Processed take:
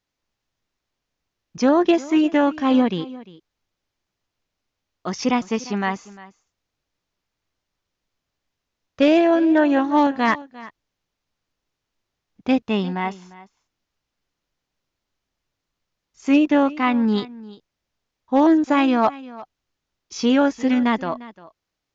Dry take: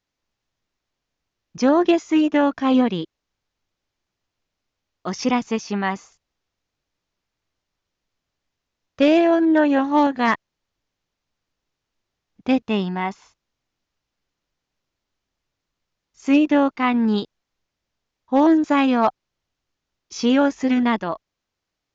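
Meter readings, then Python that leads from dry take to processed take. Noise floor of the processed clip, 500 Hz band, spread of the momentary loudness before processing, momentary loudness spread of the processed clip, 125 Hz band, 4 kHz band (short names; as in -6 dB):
-82 dBFS, 0.0 dB, 14 LU, 15 LU, n/a, 0.0 dB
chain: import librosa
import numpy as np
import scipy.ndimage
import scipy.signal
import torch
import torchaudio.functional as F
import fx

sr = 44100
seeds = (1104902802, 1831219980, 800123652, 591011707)

y = x + 10.0 ** (-19.0 / 20.0) * np.pad(x, (int(350 * sr / 1000.0), 0))[:len(x)]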